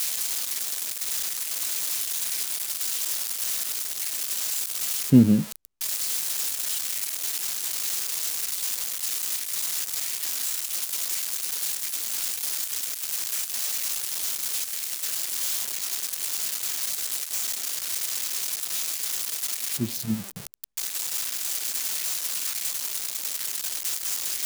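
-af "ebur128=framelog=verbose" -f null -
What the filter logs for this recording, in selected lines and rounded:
Integrated loudness:
  I:         -25.6 LUFS
  Threshold: -35.7 LUFS
Loudness range:
  LRA:         3.8 LU
  Threshold: -45.6 LUFS
  LRA low:   -27.1 LUFS
  LRA high:  -23.3 LUFS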